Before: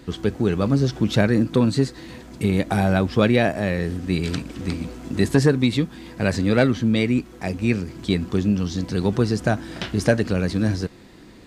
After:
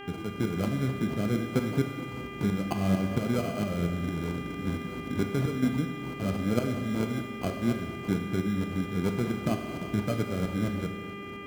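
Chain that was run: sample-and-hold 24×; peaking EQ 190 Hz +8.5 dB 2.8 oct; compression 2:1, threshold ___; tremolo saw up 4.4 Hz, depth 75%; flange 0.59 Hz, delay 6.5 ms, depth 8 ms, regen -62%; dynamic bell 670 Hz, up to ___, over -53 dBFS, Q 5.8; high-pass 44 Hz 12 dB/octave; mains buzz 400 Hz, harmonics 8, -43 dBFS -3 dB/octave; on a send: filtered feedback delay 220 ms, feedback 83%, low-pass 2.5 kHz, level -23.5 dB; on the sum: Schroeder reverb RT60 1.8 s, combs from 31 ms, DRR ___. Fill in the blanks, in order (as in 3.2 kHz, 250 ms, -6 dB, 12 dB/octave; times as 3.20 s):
-25 dBFS, +5 dB, 6 dB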